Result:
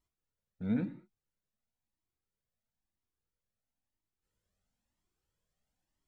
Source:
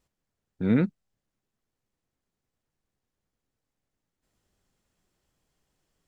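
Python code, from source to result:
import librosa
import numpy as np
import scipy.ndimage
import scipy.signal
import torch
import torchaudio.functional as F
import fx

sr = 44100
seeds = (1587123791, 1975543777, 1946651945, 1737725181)

y = fx.rev_gated(x, sr, seeds[0], gate_ms=240, shape='falling', drr_db=9.0)
y = fx.dynamic_eq(y, sr, hz=2200.0, q=0.84, threshold_db=-46.0, ratio=4.0, max_db=-4)
y = fx.comb_cascade(y, sr, direction='rising', hz=1.0)
y = F.gain(torch.from_numpy(y), -6.5).numpy()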